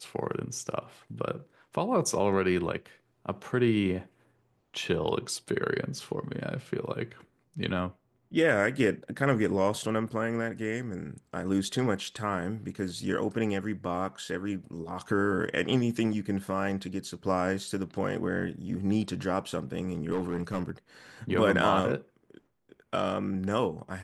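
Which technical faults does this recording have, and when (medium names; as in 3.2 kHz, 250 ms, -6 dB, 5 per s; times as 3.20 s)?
20.11–20.71 s: clipped -25 dBFS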